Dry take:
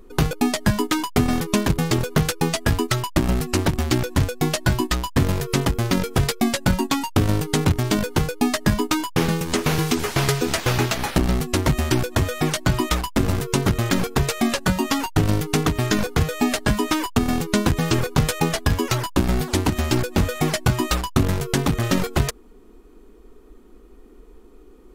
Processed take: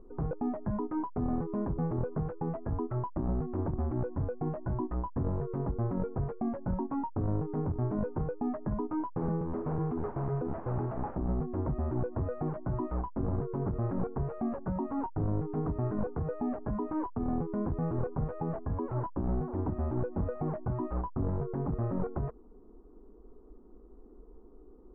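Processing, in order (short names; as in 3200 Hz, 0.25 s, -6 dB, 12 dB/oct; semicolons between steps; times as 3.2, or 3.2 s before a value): limiter -17.5 dBFS, peak gain reduction 11 dB; inverse Chebyshev low-pass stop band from 4600 Hz, stop band 70 dB; gain -6 dB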